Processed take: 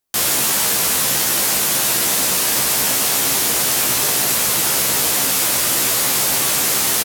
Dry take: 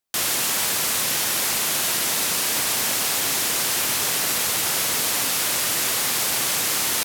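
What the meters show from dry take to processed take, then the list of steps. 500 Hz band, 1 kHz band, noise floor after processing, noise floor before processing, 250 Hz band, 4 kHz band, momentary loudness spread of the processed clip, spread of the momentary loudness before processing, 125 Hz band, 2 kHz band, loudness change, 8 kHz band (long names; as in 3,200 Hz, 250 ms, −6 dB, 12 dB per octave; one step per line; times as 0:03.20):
+6.0 dB, +4.5 dB, −18 dBFS, −23 dBFS, +6.5 dB, +3.5 dB, 0 LU, 0 LU, +7.0 dB, +3.0 dB, +5.5 dB, +5.5 dB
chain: parametric band 2,500 Hz −4 dB 2.9 octaves
double-tracking delay 15 ms −4 dB
level +5.5 dB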